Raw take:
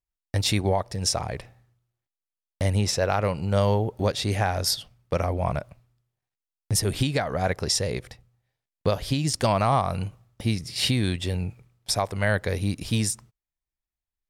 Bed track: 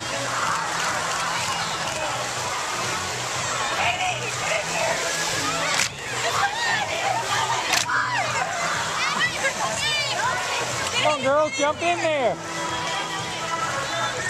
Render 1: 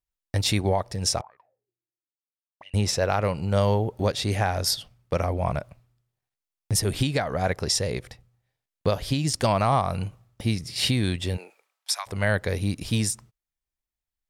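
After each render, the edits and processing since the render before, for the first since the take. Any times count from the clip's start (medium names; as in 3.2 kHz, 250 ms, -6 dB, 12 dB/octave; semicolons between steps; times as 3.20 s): 1.21–2.74 s: auto-wah 310–2800 Hz, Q 15, up, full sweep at -23 dBFS; 11.36–12.06 s: high-pass 340 Hz -> 1.2 kHz 24 dB/octave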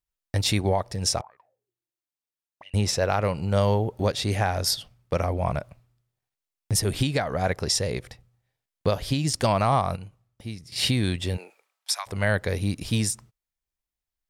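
9.96–10.72 s: gain -10.5 dB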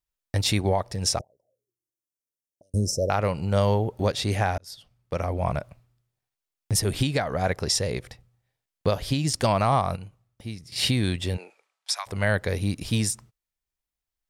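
1.19–3.10 s: Chebyshev band-stop 600–5500 Hz, order 4; 4.58–5.44 s: fade in; 11.34–11.97 s: low-pass 8.8 kHz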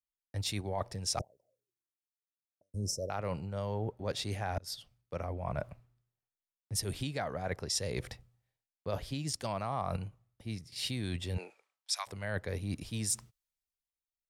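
reverse; compression 8:1, threshold -33 dBFS, peak gain reduction 15.5 dB; reverse; three bands expanded up and down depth 40%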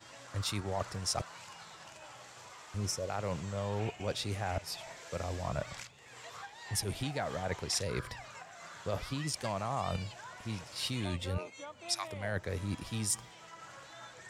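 add bed track -25 dB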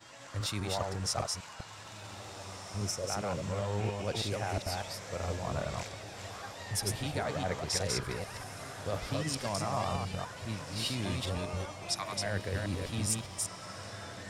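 chunks repeated in reverse 201 ms, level -2.5 dB; on a send: echo that smears into a reverb 1709 ms, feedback 55%, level -12 dB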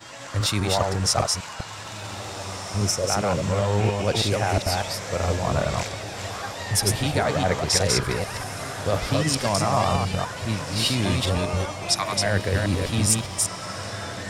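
trim +11.5 dB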